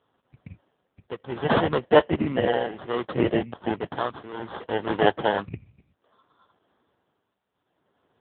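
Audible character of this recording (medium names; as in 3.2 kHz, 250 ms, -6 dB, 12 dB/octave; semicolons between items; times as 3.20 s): aliases and images of a low sample rate 2.4 kHz, jitter 0%; tremolo triangle 0.64 Hz, depth 85%; AMR-NB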